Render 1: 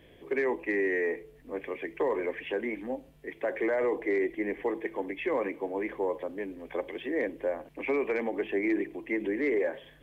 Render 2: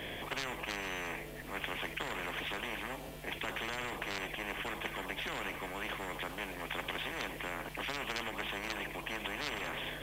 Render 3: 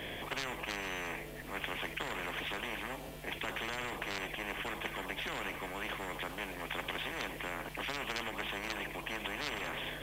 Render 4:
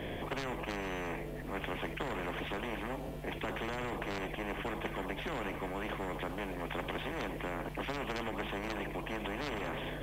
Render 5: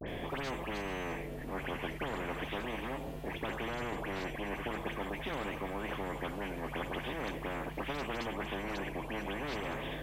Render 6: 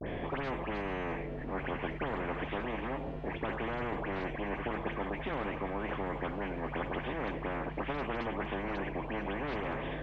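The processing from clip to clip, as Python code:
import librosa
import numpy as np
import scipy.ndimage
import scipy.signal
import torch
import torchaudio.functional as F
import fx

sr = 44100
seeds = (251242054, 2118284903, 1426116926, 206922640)

y1 = fx.spectral_comp(x, sr, ratio=10.0)
y1 = y1 * librosa.db_to_amplitude(-1.5)
y2 = y1
y3 = fx.tilt_shelf(y2, sr, db=6.5, hz=1200.0)
y4 = fx.dispersion(y3, sr, late='highs', ms=72.0, hz=2200.0)
y4 = fx.vibrato(y4, sr, rate_hz=0.42, depth_cents=46.0)
y5 = scipy.signal.sosfilt(scipy.signal.butter(2, 2300.0, 'lowpass', fs=sr, output='sos'), y4)
y5 = y5 * librosa.db_to_amplitude(2.5)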